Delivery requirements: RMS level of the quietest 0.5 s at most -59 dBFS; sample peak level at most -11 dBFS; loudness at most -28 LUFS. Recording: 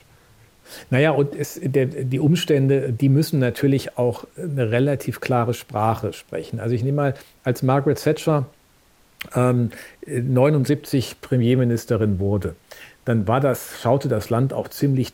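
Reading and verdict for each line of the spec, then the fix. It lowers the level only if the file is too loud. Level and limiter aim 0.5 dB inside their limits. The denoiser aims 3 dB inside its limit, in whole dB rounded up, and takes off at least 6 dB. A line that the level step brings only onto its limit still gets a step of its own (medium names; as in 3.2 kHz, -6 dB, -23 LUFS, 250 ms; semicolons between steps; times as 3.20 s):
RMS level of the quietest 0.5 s -56 dBFS: fail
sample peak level -4.0 dBFS: fail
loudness -21.0 LUFS: fail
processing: trim -7.5 dB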